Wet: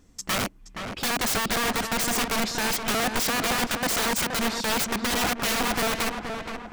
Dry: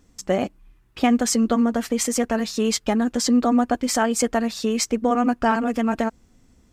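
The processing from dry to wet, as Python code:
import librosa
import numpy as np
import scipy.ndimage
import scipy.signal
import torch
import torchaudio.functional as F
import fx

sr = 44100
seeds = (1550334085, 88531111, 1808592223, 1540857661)

y = fx.highpass(x, sr, hz=92.0, slope=12, at=(3.56, 5.65))
y = (np.mod(10.0 ** (20.0 / 20.0) * y + 1.0, 2.0) - 1.0) / 10.0 ** (20.0 / 20.0)
y = fx.echo_filtered(y, sr, ms=472, feedback_pct=52, hz=2400.0, wet_db=-6.0)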